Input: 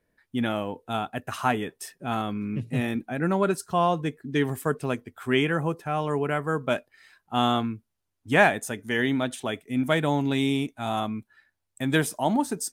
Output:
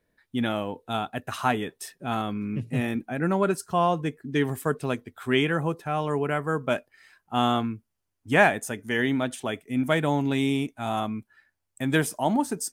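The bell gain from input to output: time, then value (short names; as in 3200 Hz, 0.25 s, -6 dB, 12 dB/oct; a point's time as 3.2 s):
bell 3800 Hz 0.27 oct
1.94 s +4.5 dB
2.61 s -4 dB
4.24 s -4 dB
4.92 s +5.5 dB
5.68 s +5.5 dB
6.51 s -4.5 dB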